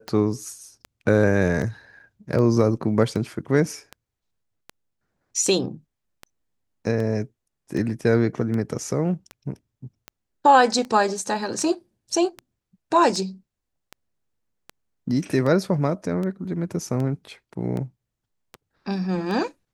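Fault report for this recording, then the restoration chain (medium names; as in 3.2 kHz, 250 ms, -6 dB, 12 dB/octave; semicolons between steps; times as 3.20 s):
tick 78 rpm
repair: de-click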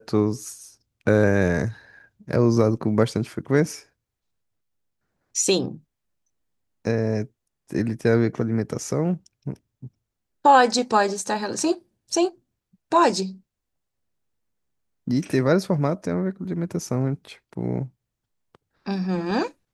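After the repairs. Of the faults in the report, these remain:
nothing left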